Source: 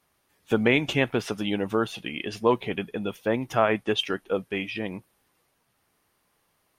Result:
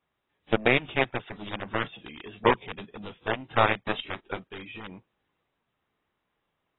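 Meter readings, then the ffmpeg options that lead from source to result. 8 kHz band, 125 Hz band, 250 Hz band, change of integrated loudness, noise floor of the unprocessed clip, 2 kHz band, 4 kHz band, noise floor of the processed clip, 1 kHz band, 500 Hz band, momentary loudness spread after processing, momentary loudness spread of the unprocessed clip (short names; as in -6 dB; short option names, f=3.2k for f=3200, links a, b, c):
under -35 dB, -3.0 dB, -6.5 dB, -1.5 dB, -71 dBFS, +0.5 dB, -4.0 dB, -80 dBFS, +1.5 dB, -4.0 dB, 18 LU, 11 LU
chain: -af "aeval=exprs='0.501*(cos(1*acos(clip(val(0)/0.501,-1,1)))-cos(1*PI/2))+0.00794*(cos(4*acos(clip(val(0)/0.501,-1,1)))-cos(4*PI/2))+0.1*(cos(7*acos(clip(val(0)/0.501,-1,1)))-cos(7*PI/2))':c=same" -ar 22050 -c:a aac -b:a 16k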